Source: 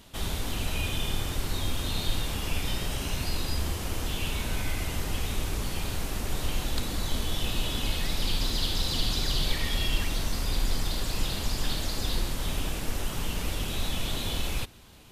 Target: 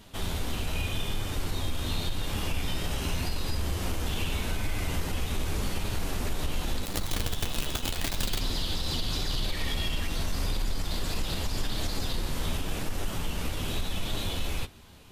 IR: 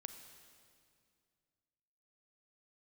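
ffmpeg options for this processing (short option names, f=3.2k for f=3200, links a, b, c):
-filter_complex "[0:a]highshelf=f=3.1k:g=-3,asplit=2[a][b];[b]asoftclip=type=tanh:threshold=-28dB,volume=-5.5dB[c];[a][c]amix=inputs=2:normalize=0,dynaudnorm=f=710:g=9:m=4dB,asettb=1/sr,asplit=3[d][e][f];[d]atrim=end=6.854[g];[e]atrim=start=6.85:end=8.4,asetpts=PTS-STARTPTS,afade=t=in:d=0.004:c=qsin,afade=t=out:st=1.546:d=0.004:c=qsin,acrusher=bits=4:dc=4:mix=0:aa=0.000001[h];[f]atrim=start=8.396[i];[g][h]acrossfade=d=0.004:c1=hsin:c2=qsin[j];[j][i]acrossfade=d=0.004:c1=qsin:c2=hsin,flanger=delay=9.3:depth=4.1:regen=-32:speed=0.85:shape=triangular,alimiter=limit=-21.5dB:level=0:latency=1:release=207,volume=1.5dB"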